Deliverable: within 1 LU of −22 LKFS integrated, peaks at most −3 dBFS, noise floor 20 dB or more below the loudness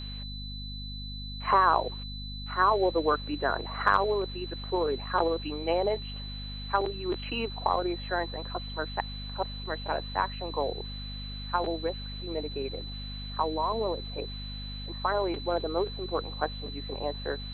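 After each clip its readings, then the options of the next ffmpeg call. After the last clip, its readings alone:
mains hum 50 Hz; hum harmonics up to 250 Hz; level of the hum −37 dBFS; interfering tone 4,000 Hz; level of the tone −41 dBFS; integrated loudness −31.0 LKFS; sample peak −8.5 dBFS; target loudness −22.0 LKFS
→ -af "bandreject=frequency=50:width_type=h:width=4,bandreject=frequency=100:width_type=h:width=4,bandreject=frequency=150:width_type=h:width=4,bandreject=frequency=200:width_type=h:width=4,bandreject=frequency=250:width_type=h:width=4"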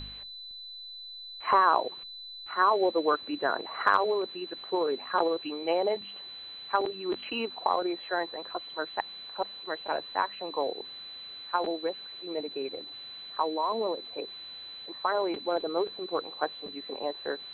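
mains hum none found; interfering tone 4,000 Hz; level of the tone −41 dBFS
→ -af "bandreject=frequency=4000:width=30"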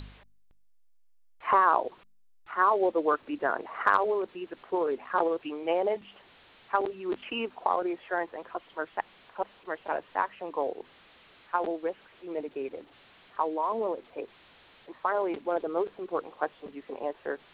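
interfering tone none found; integrated loudness −30.5 LKFS; sample peak −9.0 dBFS; target loudness −22.0 LKFS
→ -af "volume=8.5dB,alimiter=limit=-3dB:level=0:latency=1"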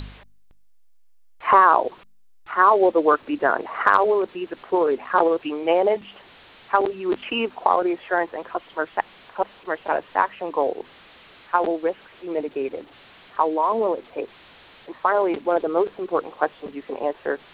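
integrated loudness −22.0 LKFS; sample peak −3.0 dBFS; background noise floor −49 dBFS

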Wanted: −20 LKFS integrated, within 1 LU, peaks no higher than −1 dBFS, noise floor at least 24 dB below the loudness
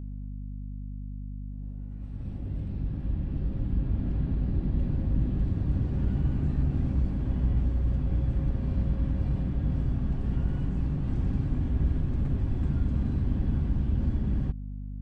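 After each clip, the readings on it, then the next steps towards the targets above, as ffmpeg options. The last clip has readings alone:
mains hum 50 Hz; hum harmonics up to 250 Hz; level of the hum −34 dBFS; integrated loudness −30.0 LKFS; sample peak −15.0 dBFS; target loudness −20.0 LKFS
→ -af "bandreject=frequency=50:width_type=h:width=6,bandreject=frequency=100:width_type=h:width=6,bandreject=frequency=150:width_type=h:width=6,bandreject=frequency=200:width_type=h:width=6,bandreject=frequency=250:width_type=h:width=6"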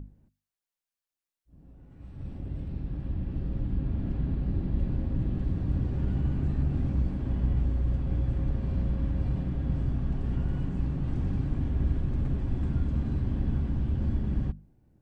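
mains hum none found; integrated loudness −30.5 LKFS; sample peak −15.0 dBFS; target loudness −20.0 LKFS
→ -af "volume=10.5dB"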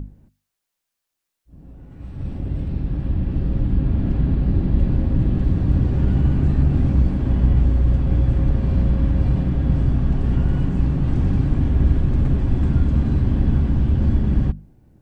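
integrated loudness −20.0 LKFS; sample peak −4.5 dBFS; background noise floor −81 dBFS

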